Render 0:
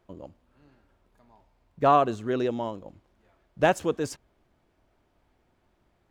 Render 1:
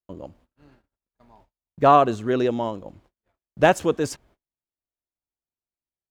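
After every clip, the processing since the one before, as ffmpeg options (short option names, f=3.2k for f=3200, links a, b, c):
-af "agate=range=-39dB:threshold=-60dB:ratio=16:detection=peak,volume=5dB"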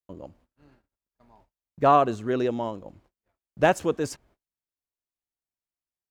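-af "equalizer=f=3.4k:t=o:w=0.36:g=-2.5,volume=-3.5dB"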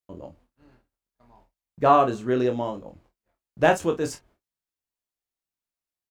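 -af "aecho=1:1:24|50:0.531|0.2"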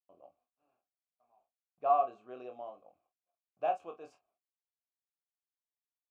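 -filter_complex "[0:a]asplit=3[a][b][c];[a]bandpass=f=730:t=q:w=8,volume=0dB[d];[b]bandpass=f=1.09k:t=q:w=8,volume=-6dB[e];[c]bandpass=f=2.44k:t=q:w=8,volume=-9dB[f];[d][e][f]amix=inputs=3:normalize=0,volume=-6.5dB"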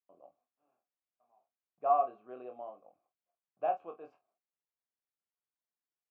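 -af "highpass=130,lowpass=2k"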